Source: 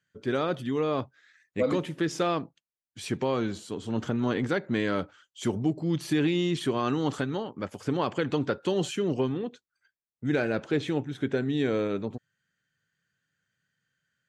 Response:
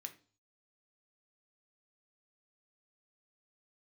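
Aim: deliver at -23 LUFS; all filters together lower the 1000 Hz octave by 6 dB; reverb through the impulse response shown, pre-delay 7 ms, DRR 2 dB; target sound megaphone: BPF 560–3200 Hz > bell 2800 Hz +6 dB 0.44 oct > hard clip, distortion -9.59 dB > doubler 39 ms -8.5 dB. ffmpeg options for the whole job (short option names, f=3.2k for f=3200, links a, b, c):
-filter_complex "[0:a]equalizer=f=1k:t=o:g=-7.5,asplit=2[a][b];[1:a]atrim=start_sample=2205,adelay=7[c];[b][c]afir=irnorm=-1:irlink=0,volume=2.5dB[d];[a][d]amix=inputs=2:normalize=0,highpass=560,lowpass=3.2k,equalizer=f=2.8k:t=o:w=0.44:g=6,asoftclip=type=hard:threshold=-31.5dB,asplit=2[e][f];[f]adelay=39,volume=-8.5dB[g];[e][g]amix=inputs=2:normalize=0,volume=13.5dB"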